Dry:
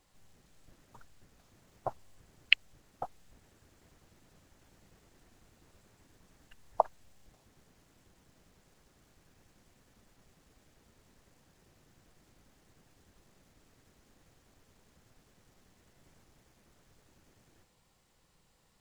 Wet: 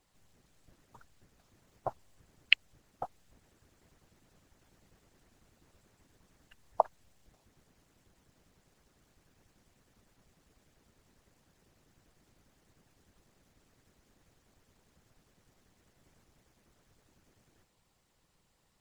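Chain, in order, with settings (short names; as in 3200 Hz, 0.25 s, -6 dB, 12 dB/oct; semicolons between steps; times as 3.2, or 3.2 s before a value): harmonic-percussive split harmonic -8 dB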